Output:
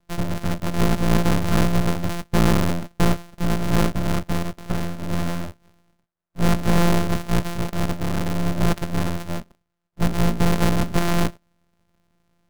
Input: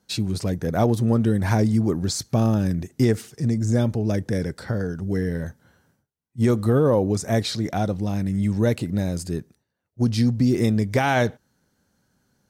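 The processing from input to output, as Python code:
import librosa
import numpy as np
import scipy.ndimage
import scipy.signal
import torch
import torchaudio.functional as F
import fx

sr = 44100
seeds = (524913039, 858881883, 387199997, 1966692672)

y = np.r_[np.sort(x[:len(x) // 256 * 256].reshape(-1, 256), axis=1).ravel(), x[len(x) // 256 * 256:]]
y = fx.peak_eq(y, sr, hz=1400.0, db=9.5, octaves=1.0)
y = fx.small_body(y, sr, hz=(210.0, 590.0), ring_ms=45, db=8)
y = np.maximum(y, 0.0)
y = F.gain(torch.from_numpy(y), 3.5).numpy()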